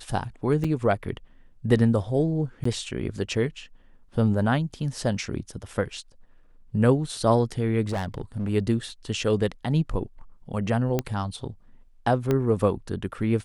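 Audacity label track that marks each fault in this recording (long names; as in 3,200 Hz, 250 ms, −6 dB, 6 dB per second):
0.640000	0.650000	drop-out 5 ms
2.640000	2.650000	drop-out 14 ms
7.880000	8.500000	clipping −24 dBFS
10.990000	10.990000	click −11 dBFS
12.310000	12.310000	click −12 dBFS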